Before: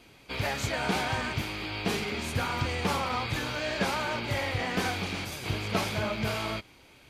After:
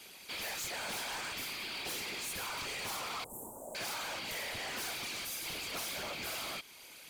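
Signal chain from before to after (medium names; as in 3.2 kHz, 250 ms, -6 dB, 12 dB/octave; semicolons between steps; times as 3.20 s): RIAA curve recording; whisper effect; in parallel at 0 dB: compression, threshold -42 dBFS, peak gain reduction 18 dB; on the sum: saturation -30 dBFS, distortion -9 dB; 3.24–3.75 s: Chebyshev band-stop 940–7900 Hz, order 4; trim -6.5 dB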